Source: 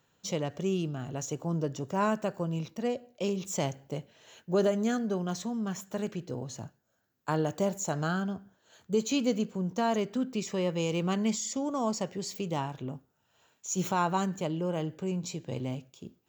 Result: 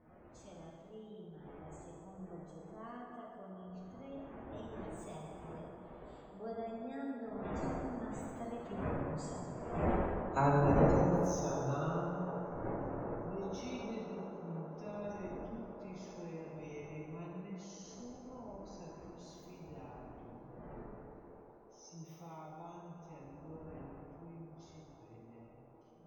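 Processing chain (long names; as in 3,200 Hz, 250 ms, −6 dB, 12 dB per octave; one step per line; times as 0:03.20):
wind on the microphone 520 Hz −34 dBFS
source passing by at 0:06.31, 40 m/s, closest 6.9 metres
gate on every frequency bin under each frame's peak −30 dB strong
in parallel at +1 dB: downward compressor 6 to 1, threshold −59 dBFS, peak gain reduction 28.5 dB
on the sum: high-shelf EQ 6,900 Hz −5.5 dB
phase-vocoder stretch with locked phases 1.6×
on a send: delay with a band-pass on its return 380 ms, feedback 85%, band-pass 680 Hz, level −11.5 dB
on the sum: dense smooth reverb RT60 2.1 s, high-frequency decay 0.65×, DRR −3 dB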